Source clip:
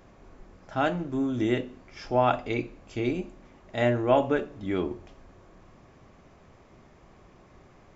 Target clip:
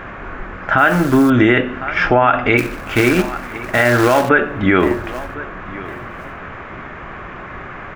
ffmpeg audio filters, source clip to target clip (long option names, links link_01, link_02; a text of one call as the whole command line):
ffmpeg -i in.wav -filter_complex "[0:a]highshelf=frequency=3800:width_type=q:width=1.5:gain=-10.5,asplit=3[link_01][link_02][link_03];[link_01]afade=type=out:start_time=2.57:duration=0.02[link_04];[link_02]acrusher=bits=3:mode=log:mix=0:aa=0.000001,afade=type=in:start_time=2.57:duration=0.02,afade=type=out:start_time=4.28:duration=0.02[link_05];[link_03]afade=type=in:start_time=4.28:duration=0.02[link_06];[link_04][link_05][link_06]amix=inputs=3:normalize=0,acompressor=threshold=-28dB:ratio=6,equalizer=frequency=1500:width=1.3:gain=13.5,aecho=1:1:1054|2108:0.1|0.025,asettb=1/sr,asplit=3[link_07][link_08][link_09];[link_07]atrim=end=0.784[link_10];[link_08]atrim=start=0.78:end=1.3,asetpts=PTS-STARTPTS,afade=type=in:duration=0.004:curve=qsin,afade=type=out:start_time=0.516:duration=0.004:curve=qsin,acrusher=bits=9:dc=4:mix=0:aa=0.000001[link_11];[link_09]atrim=start=1.296[link_12];[link_10][link_11]acrossfade=duration=0.004:curve1=hsin:curve2=qsin[link_13];[link_13][link_12]acrossfade=duration=0.004:curve1=qsin:curve2=hsin,alimiter=level_in=20dB:limit=-1dB:release=50:level=0:latency=1,volume=-1dB" out.wav